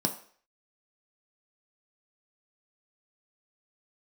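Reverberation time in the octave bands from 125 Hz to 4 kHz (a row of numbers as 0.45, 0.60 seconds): 0.30, 0.40, 0.50, 0.50, 0.55, 0.50 seconds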